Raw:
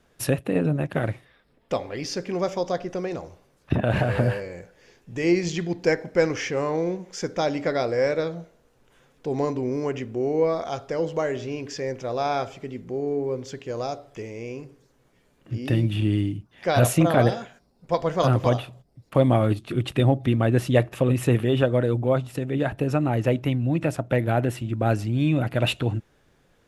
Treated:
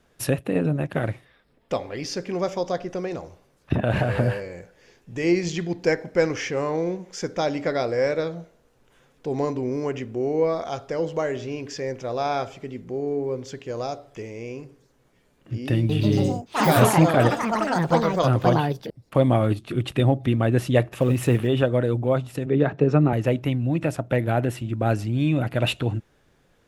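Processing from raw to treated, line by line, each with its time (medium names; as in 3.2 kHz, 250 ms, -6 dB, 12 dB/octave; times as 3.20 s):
15.75–19.77 s: ever faster or slower copies 141 ms, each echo +5 st, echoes 3
21.00–21.47 s: companding laws mixed up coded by mu
22.46–23.13 s: cabinet simulation 140–5800 Hz, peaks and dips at 150 Hz +10 dB, 280 Hz +3 dB, 420 Hz +9 dB, 1.2 kHz +3 dB, 3 kHz -5 dB, 4.8 kHz -4 dB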